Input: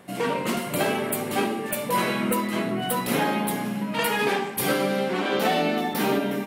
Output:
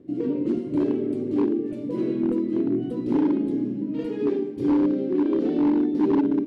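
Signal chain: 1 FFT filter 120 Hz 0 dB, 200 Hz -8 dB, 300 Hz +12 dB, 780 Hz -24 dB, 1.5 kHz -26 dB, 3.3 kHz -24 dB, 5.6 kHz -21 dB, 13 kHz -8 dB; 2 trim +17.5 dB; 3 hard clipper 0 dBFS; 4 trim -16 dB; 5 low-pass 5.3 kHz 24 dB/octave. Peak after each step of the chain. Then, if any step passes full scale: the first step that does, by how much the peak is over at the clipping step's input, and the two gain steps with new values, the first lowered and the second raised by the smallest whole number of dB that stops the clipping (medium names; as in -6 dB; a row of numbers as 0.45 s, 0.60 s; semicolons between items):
-10.5 dBFS, +7.0 dBFS, 0.0 dBFS, -16.0 dBFS, -16.0 dBFS; step 2, 7.0 dB; step 2 +10.5 dB, step 4 -9 dB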